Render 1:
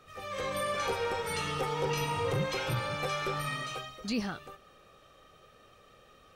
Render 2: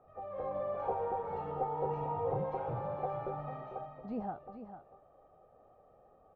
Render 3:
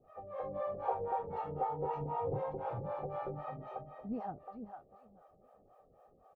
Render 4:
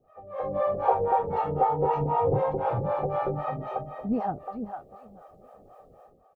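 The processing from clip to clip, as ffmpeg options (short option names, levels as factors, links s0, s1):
-af "lowpass=f=760:t=q:w=4.9,aecho=1:1:446:0.316,volume=0.422"
-filter_complex "[0:a]aecho=1:1:876:0.0708,acrossover=split=480[s0][s1];[s0]aeval=exprs='val(0)*(1-1/2+1/2*cos(2*PI*3.9*n/s))':c=same[s2];[s1]aeval=exprs='val(0)*(1-1/2-1/2*cos(2*PI*3.9*n/s))':c=same[s3];[s2][s3]amix=inputs=2:normalize=0,volume=1.5"
-af "dynaudnorm=f=110:g=7:m=3.98"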